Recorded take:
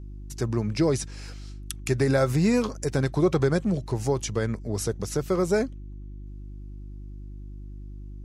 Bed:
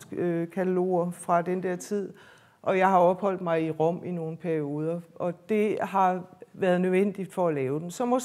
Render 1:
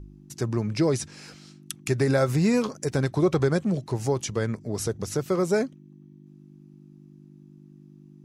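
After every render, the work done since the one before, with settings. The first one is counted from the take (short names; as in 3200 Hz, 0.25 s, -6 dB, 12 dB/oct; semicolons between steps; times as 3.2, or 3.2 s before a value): de-hum 50 Hz, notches 2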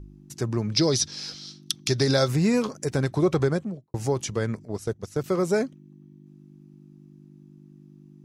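0.72–2.28 band shelf 4400 Hz +13.5 dB 1.1 oct; 3.41–3.94 studio fade out; 4.65–5.24 gate -30 dBFS, range -13 dB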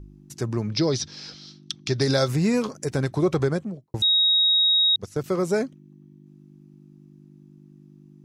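0.69–2.01 air absorption 100 m; 4.02–4.96 bleep 3780 Hz -16 dBFS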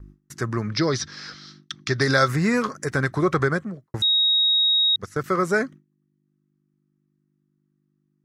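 gate with hold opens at -36 dBFS; band shelf 1500 Hz +11.5 dB 1.1 oct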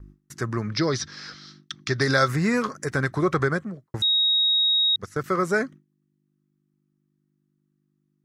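gain -1.5 dB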